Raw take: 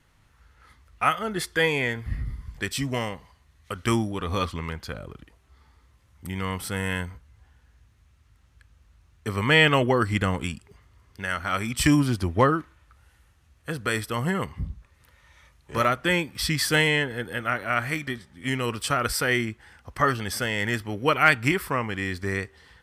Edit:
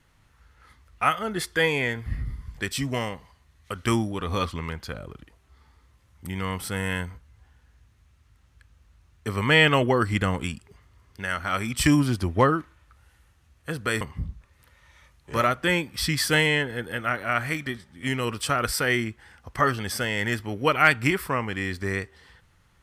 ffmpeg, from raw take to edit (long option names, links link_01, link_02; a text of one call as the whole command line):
ffmpeg -i in.wav -filter_complex "[0:a]asplit=2[link_01][link_02];[link_01]atrim=end=14.012[link_03];[link_02]atrim=start=14.418[link_04];[link_03][link_04]acrossfade=duration=0.004:curve1=hsin:curve2=hsin" out.wav